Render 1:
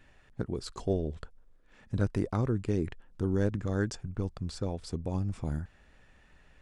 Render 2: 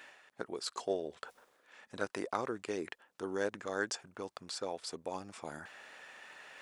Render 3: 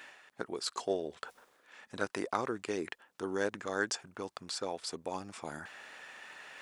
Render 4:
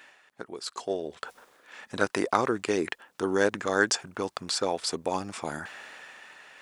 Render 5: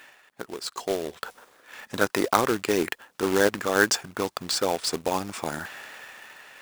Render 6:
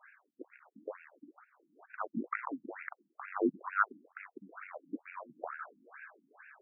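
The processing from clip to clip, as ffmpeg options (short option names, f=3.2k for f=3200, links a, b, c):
-af "highpass=610,areverse,acompressor=mode=upward:threshold=-46dB:ratio=2.5,areverse,volume=3.5dB"
-af "equalizer=f=550:t=o:w=0.77:g=-2.5,volume=3dB"
-af "dynaudnorm=f=220:g=11:m=11dB,volume=-1.5dB"
-af "acrusher=bits=2:mode=log:mix=0:aa=0.000001,volume=2.5dB"
-af "highpass=f=330:t=q:w=0.5412,highpass=f=330:t=q:w=1.307,lowpass=f=2.7k:t=q:w=0.5176,lowpass=f=2.7k:t=q:w=0.7071,lowpass=f=2.7k:t=q:w=1.932,afreqshift=-160,afftfilt=real='re*between(b*sr/1024,220*pow(2000/220,0.5+0.5*sin(2*PI*2.2*pts/sr))/1.41,220*pow(2000/220,0.5+0.5*sin(2*PI*2.2*pts/sr))*1.41)':imag='im*between(b*sr/1024,220*pow(2000/220,0.5+0.5*sin(2*PI*2.2*pts/sr))/1.41,220*pow(2000/220,0.5+0.5*sin(2*PI*2.2*pts/sr))*1.41)':win_size=1024:overlap=0.75,volume=-4.5dB"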